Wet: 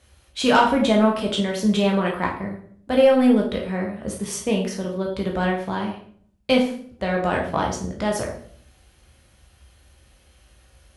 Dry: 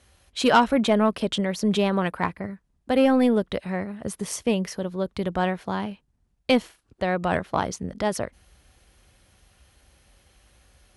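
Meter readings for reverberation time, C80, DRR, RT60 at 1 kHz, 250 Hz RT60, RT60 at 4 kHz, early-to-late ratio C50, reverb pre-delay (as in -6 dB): 0.55 s, 10.5 dB, -0.5 dB, 0.50 s, 0.75 s, 0.45 s, 6.5 dB, 12 ms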